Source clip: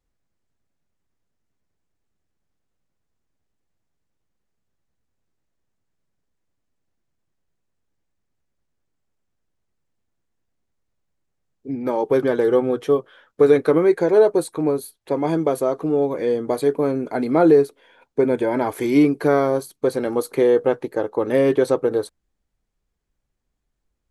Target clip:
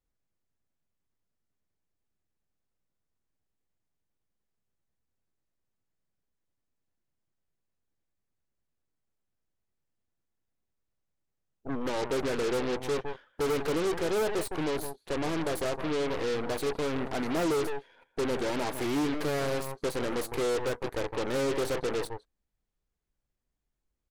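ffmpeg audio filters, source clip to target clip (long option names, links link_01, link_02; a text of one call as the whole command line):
ffmpeg -i in.wav -filter_complex "[0:a]asplit=2[link_01][link_02];[link_02]adelay=160,highpass=300,lowpass=3400,asoftclip=type=hard:threshold=-12dB,volume=-13dB[link_03];[link_01][link_03]amix=inputs=2:normalize=0,asoftclip=type=tanh:threshold=-18dB,aeval=exprs='0.126*(cos(1*acos(clip(val(0)/0.126,-1,1)))-cos(1*PI/2))+0.0178*(cos(2*acos(clip(val(0)/0.126,-1,1)))-cos(2*PI/2))+0.0355*(cos(8*acos(clip(val(0)/0.126,-1,1)))-cos(8*PI/2))':channel_layout=same,volume=-7.5dB" out.wav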